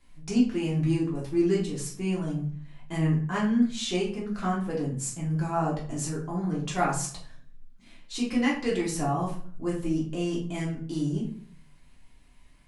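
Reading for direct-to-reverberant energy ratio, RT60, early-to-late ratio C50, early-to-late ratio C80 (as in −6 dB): −5.5 dB, 0.55 s, 6.5 dB, 11.5 dB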